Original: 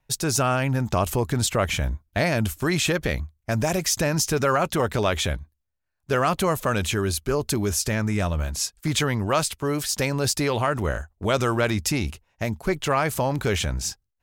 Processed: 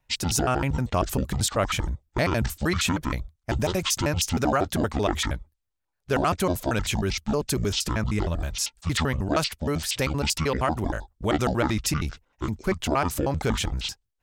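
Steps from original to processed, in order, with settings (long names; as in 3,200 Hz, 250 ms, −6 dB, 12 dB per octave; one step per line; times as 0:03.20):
pitch shifter gated in a rhythm −10.5 semitones, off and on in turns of 78 ms
level −1 dB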